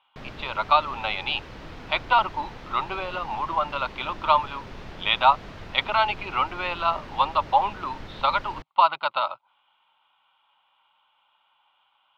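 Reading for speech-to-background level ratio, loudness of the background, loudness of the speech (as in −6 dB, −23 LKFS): 17.0 dB, −42.0 LKFS, −25.0 LKFS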